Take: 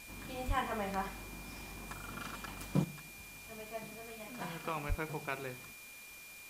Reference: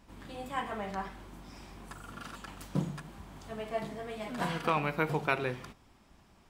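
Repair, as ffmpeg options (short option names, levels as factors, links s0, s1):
-filter_complex "[0:a]bandreject=f=2400:w=30,asplit=3[s0][s1][s2];[s0]afade=t=out:st=0.47:d=0.02[s3];[s1]highpass=f=140:w=0.5412,highpass=f=140:w=1.3066,afade=t=in:st=0.47:d=0.02,afade=t=out:st=0.59:d=0.02[s4];[s2]afade=t=in:st=0.59:d=0.02[s5];[s3][s4][s5]amix=inputs=3:normalize=0,asplit=3[s6][s7][s8];[s6]afade=t=out:st=4.88:d=0.02[s9];[s7]highpass=f=140:w=0.5412,highpass=f=140:w=1.3066,afade=t=in:st=4.88:d=0.02,afade=t=out:st=5:d=0.02[s10];[s8]afade=t=in:st=5:d=0.02[s11];[s9][s10][s11]amix=inputs=3:normalize=0,afwtdn=0.002,asetnsamples=n=441:p=0,asendcmd='2.84 volume volume 9.5dB',volume=1"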